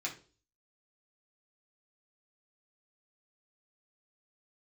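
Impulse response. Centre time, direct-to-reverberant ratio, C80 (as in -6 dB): 15 ms, -3.0 dB, 17.0 dB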